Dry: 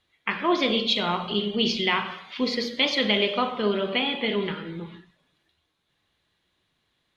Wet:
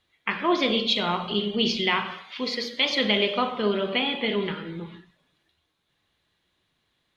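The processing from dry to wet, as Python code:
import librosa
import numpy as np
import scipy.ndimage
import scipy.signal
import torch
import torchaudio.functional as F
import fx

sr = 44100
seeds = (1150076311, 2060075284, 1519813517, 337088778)

y = fx.low_shelf(x, sr, hz=410.0, db=-8.0, at=(2.22, 2.9))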